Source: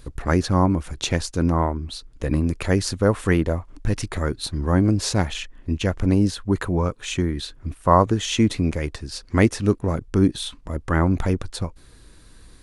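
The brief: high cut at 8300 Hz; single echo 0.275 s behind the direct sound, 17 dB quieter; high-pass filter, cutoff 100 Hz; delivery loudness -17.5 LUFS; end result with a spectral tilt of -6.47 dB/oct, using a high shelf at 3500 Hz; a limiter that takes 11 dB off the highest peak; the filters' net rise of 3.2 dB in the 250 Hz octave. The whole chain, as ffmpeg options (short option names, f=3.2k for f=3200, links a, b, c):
-af "highpass=100,lowpass=8.3k,equalizer=f=250:t=o:g=4.5,highshelf=f=3.5k:g=-7,alimiter=limit=-10.5dB:level=0:latency=1,aecho=1:1:275:0.141,volume=7dB"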